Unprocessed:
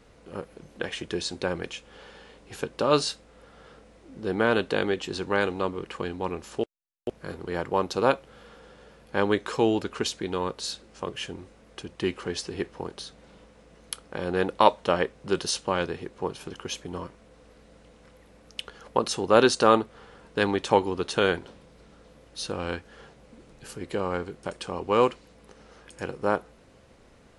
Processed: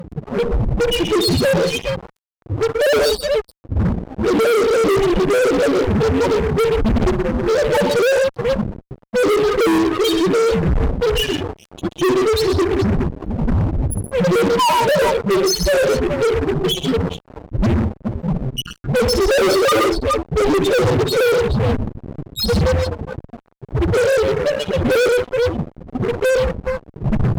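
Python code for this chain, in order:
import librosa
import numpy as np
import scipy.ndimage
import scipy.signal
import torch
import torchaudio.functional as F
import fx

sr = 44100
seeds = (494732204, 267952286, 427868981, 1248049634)

p1 = fx.dmg_wind(x, sr, seeds[0], corner_hz=280.0, level_db=-37.0)
p2 = fx.spec_topn(p1, sr, count=1)
p3 = fx.rider(p2, sr, range_db=5, speed_s=2.0)
p4 = p2 + (p3 * librosa.db_to_amplitude(-0.5))
p5 = fx.echo_multitap(p4, sr, ms=(59, 123, 168, 420), db=(-12.5, -10.0, -16.5, -14.5))
y = fx.fuzz(p5, sr, gain_db=40.0, gate_db=-46.0)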